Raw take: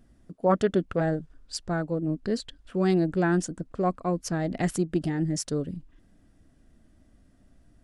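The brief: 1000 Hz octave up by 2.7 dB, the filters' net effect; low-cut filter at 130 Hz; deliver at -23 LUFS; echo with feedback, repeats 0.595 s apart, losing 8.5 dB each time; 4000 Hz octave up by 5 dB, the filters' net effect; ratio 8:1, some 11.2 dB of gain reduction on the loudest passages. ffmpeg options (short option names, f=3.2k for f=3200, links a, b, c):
-af "highpass=130,equalizer=f=1k:t=o:g=3.5,equalizer=f=4k:t=o:g=6.5,acompressor=threshold=-28dB:ratio=8,aecho=1:1:595|1190|1785|2380:0.376|0.143|0.0543|0.0206,volume=10.5dB"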